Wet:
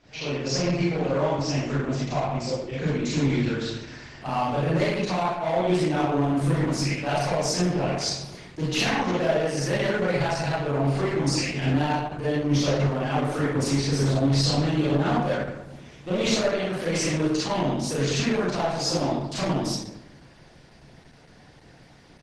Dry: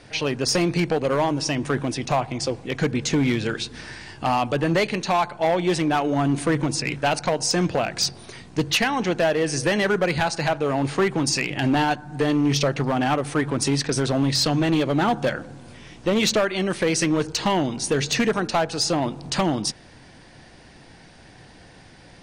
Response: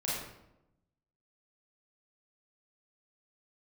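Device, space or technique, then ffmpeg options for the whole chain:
speakerphone in a meeting room: -filter_complex "[1:a]atrim=start_sample=2205[a];[0:a][a]afir=irnorm=-1:irlink=0,asplit=2[b][c];[c]adelay=130,highpass=300,lowpass=3.4k,asoftclip=type=hard:threshold=-10dB,volume=-14dB[d];[b][d]amix=inputs=2:normalize=0,dynaudnorm=f=620:g=13:m=12.5dB,volume=-9dB" -ar 48000 -c:a libopus -b:a 12k

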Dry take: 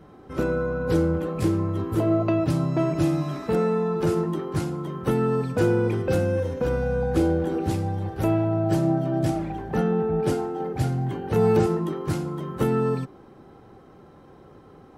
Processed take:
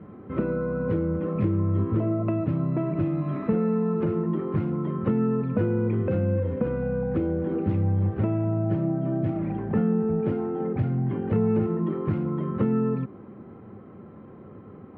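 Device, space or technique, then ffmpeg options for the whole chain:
bass amplifier: -af "acompressor=threshold=-27dB:ratio=4,highpass=82,equalizer=f=100:t=q:w=4:g=8,equalizer=f=210:t=q:w=4:g=10,equalizer=f=800:t=q:w=4:g=-7,equalizer=f=1.6k:t=q:w=4:g=-5,lowpass=f=2.3k:w=0.5412,lowpass=f=2.3k:w=1.3066,volume=2.5dB"

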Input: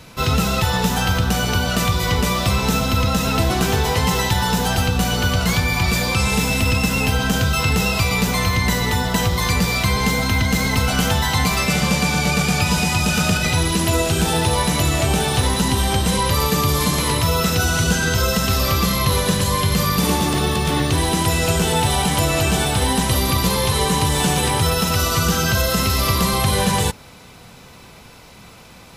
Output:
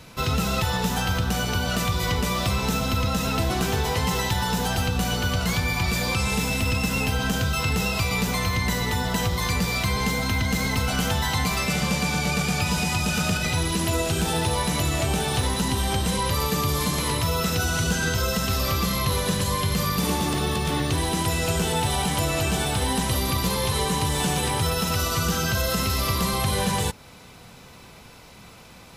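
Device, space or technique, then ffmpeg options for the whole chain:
clipper into limiter: -af "asoftclip=type=hard:threshold=-8.5dB,alimiter=limit=-11dB:level=0:latency=1:release=234,volume=-3.5dB"

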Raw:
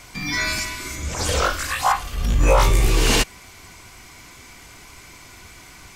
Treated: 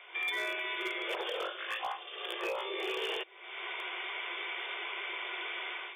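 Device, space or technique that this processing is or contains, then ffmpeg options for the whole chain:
FM broadcast chain: -filter_complex "[0:a]afftfilt=real='re*between(b*sr/4096,340,3600)':imag='im*between(b*sr/4096,340,3600)':win_size=4096:overlap=0.75,highpass=f=42:w=0.5412,highpass=f=42:w=1.3066,dynaudnorm=f=120:g=5:m=15.5dB,acrossover=split=610|3100[a][b][c];[a]acompressor=threshold=-24dB:ratio=4[d];[b]acompressor=threshold=-31dB:ratio=4[e];[c]acompressor=threshold=-37dB:ratio=4[f];[d][e][f]amix=inputs=3:normalize=0,aemphasis=mode=production:type=50fm,alimiter=limit=-17.5dB:level=0:latency=1:release=489,asoftclip=type=hard:threshold=-20dB,lowpass=f=15k:w=0.5412,lowpass=f=15k:w=1.3066,aemphasis=mode=production:type=50fm,volume=-8.5dB"

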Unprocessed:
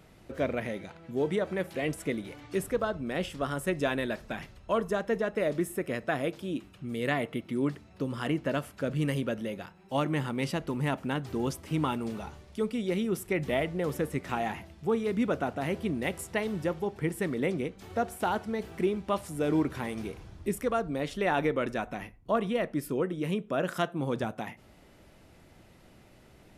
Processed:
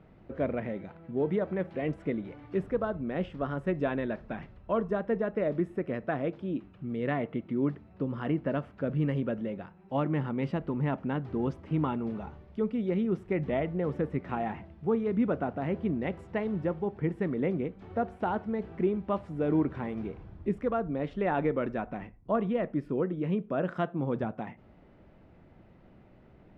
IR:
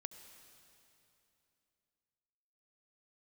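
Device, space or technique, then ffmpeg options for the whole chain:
phone in a pocket: -af "lowpass=3k,equalizer=f=190:t=o:w=0.77:g=2.5,highshelf=f=2.2k:g=-12"

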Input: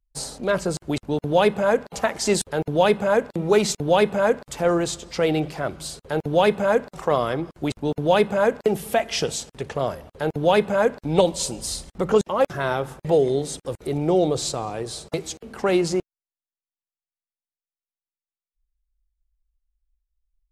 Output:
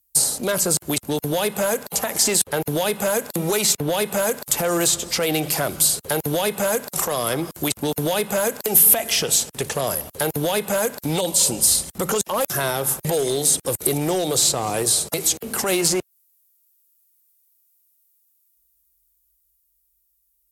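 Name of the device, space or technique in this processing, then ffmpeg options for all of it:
FM broadcast chain: -filter_complex "[0:a]highpass=80,dynaudnorm=f=410:g=13:m=5dB,acrossover=split=620|3300[a][b][c];[a]acompressor=threshold=-25dB:ratio=4[d];[b]acompressor=threshold=-26dB:ratio=4[e];[c]acompressor=threshold=-40dB:ratio=4[f];[d][e][f]amix=inputs=3:normalize=0,aemphasis=mode=production:type=50fm,alimiter=limit=-17dB:level=0:latency=1:release=107,asoftclip=type=hard:threshold=-20.5dB,lowpass=f=15k:w=0.5412,lowpass=f=15k:w=1.3066,aemphasis=mode=production:type=50fm,volume=4.5dB"

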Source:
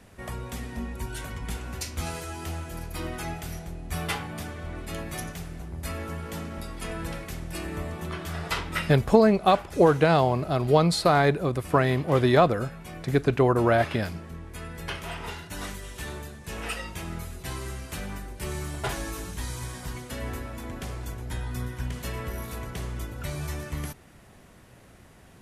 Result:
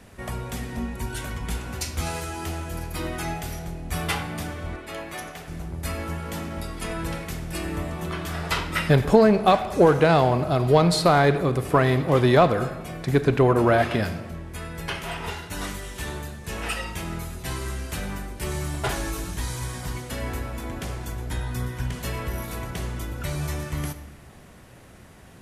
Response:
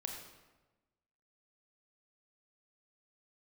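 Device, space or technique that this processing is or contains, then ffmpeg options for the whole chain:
saturated reverb return: -filter_complex "[0:a]asplit=2[a][b];[1:a]atrim=start_sample=2205[c];[b][c]afir=irnorm=-1:irlink=0,asoftclip=type=tanh:threshold=-21dB,volume=-2dB[d];[a][d]amix=inputs=2:normalize=0,asettb=1/sr,asplit=3[e][f][g];[e]atrim=end=4.764[h];[f]atrim=start=4.76:end=5.48,asetpts=PTS-STARTPTS,afade=t=in:d=0.004:c=qsin,afade=t=out:st=0.716:d=0.004:c=qsin,bass=f=250:g=-14,treble=f=4k:g=-7[i];[g]atrim=start=5.476[j];[h][i]acrossfade=d=0.004:c1=hsin:c2=qsin[k];[k][j]acrossfade=d=0.004:c1=qsin:c2=hsin"

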